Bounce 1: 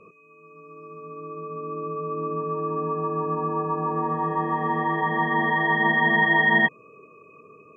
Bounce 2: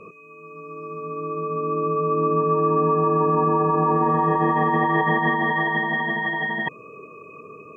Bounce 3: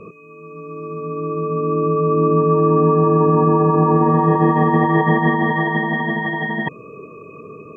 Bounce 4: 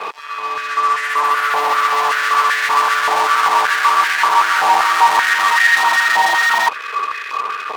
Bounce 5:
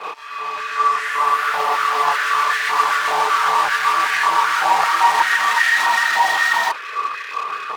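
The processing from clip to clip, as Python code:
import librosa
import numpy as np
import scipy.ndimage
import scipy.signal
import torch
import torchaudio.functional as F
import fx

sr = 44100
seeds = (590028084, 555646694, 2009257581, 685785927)

y1 = fx.over_compress(x, sr, threshold_db=-26.0, ratio=-1.0)
y1 = y1 * librosa.db_to_amplitude(5.5)
y2 = fx.low_shelf(y1, sr, hz=480.0, db=10.5)
y3 = fx.fuzz(y2, sr, gain_db=33.0, gate_db=-42.0)
y3 = fx.filter_held_highpass(y3, sr, hz=5.2, low_hz=840.0, high_hz=1700.0)
y3 = y3 * librosa.db_to_amplitude(-2.5)
y4 = fx.chorus_voices(y3, sr, voices=6, hz=1.0, base_ms=29, depth_ms=4.1, mix_pct=55)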